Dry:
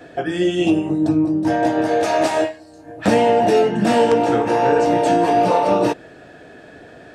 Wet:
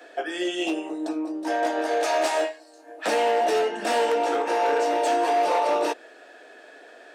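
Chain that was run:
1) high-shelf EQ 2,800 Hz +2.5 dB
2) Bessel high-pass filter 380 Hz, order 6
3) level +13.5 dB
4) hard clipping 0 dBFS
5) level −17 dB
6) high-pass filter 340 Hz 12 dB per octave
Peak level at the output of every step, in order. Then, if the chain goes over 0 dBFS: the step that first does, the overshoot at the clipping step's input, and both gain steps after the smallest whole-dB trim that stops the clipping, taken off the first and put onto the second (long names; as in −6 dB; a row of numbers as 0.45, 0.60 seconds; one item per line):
−4.5, −4.5, +9.0, 0.0, −17.0, −12.5 dBFS
step 3, 9.0 dB
step 3 +4.5 dB, step 5 −8 dB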